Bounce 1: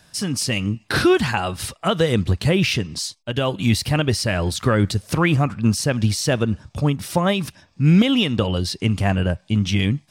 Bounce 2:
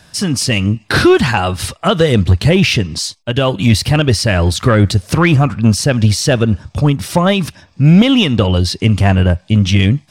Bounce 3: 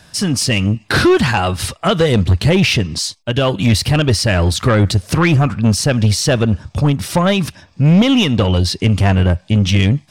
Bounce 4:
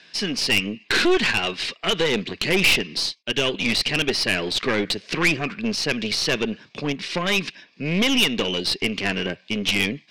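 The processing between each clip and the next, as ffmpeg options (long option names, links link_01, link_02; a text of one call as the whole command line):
ffmpeg -i in.wav -af "equalizer=frequency=85:width=2.3:gain=3.5,acontrast=69,highshelf=frequency=10000:gain=-6,volume=1.5dB" out.wav
ffmpeg -i in.wav -af "asoftclip=type=tanh:threshold=-5dB" out.wav
ffmpeg -i in.wav -af "highpass=frequency=200:width=0.5412,highpass=frequency=200:width=1.3066,equalizer=frequency=410:width_type=q:width=4:gain=6,equalizer=frequency=590:width_type=q:width=4:gain=-5,equalizer=frequency=850:width_type=q:width=4:gain=-8,equalizer=frequency=1300:width_type=q:width=4:gain=-8,equalizer=frequency=2300:width_type=q:width=4:gain=3,equalizer=frequency=3400:width_type=q:width=4:gain=-4,lowpass=frequency=3700:width=0.5412,lowpass=frequency=3700:width=1.3066,crystalizer=i=10:c=0,aeval=exprs='2*(cos(1*acos(clip(val(0)/2,-1,1)))-cos(1*PI/2))+0.631*(cos(3*acos(clip(val(0)/2,-1,1)))-cos(3*PI/2))+0.355*(cos(5*acos(clip(val(0)/2,-1,1)))-cos(5*PI/2))+0.158*(cos(6*acos(clip(val(0)/2,-1,1)))-cos(6*PI/2))':channel_layout=same,volume=-8.5dB" out.wav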